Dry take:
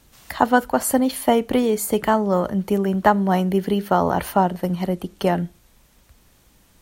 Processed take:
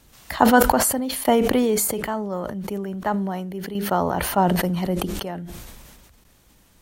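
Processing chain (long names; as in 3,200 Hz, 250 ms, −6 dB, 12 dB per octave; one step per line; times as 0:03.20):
sample-and-hold tremolo 1.6 Hz, depth 90%
level that may fall only so fast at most 28 dB per second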